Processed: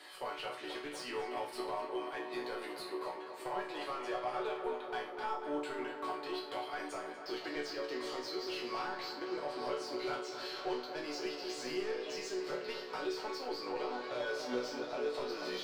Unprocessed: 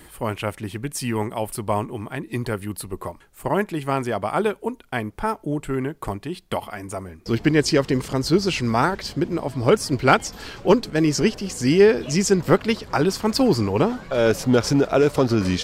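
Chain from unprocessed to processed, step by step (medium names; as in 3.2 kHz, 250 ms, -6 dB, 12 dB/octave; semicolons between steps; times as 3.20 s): high-pass 340 Hz 24 dB/octave; peaking EQ 4.3 kHz +14.5 dB 0.93 oct; compression, threshold -27 dBFS, peak gain reduction 18 dB; overdrive pedal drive 20 dB, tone 1.2 kHz, clips at -13.5 dBFS; chord resonator B2 minor, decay 0.45 s; tape echo 243 ms, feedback 86%, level -8 dB, low-pass 3.1 kHz; trim +3 dB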